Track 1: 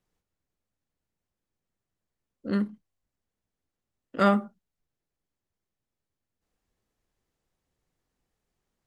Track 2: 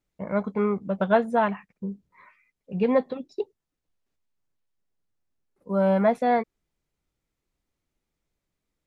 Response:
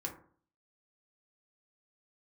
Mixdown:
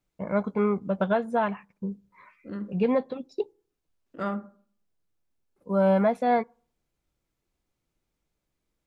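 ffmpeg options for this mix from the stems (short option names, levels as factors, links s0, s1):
-filter_complex "[0:a]highshelf=f=2400:g=-12,volume=0.299,asplit=2[s0][s1];[s1]volume=0.631[s2];[1:a]bandreject=f=1900:w=18,alimiter=limit=0.188:level=0:latency=1:release=389,volume=1,asplit=2[s3][s4];[s4]volume=0.0708[s5];[2:a]atrim=start_sample=2205[s6];[s2][s5]amix=inputs=2:normalize=0[s7];[s7][s6]afir=irnorm=-1:irlink=0[s8];[s0][s3][s8]amix=inputs=3:normalize=0"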